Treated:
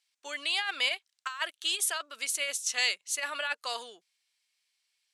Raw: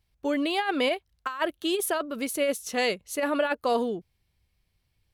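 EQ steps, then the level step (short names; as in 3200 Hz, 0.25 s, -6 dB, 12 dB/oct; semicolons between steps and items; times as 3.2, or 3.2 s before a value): Bessel high-pass 2200 Hz, order 2; synth low-pass 7900 Hz, resonance Q 1.7; +3.5 dB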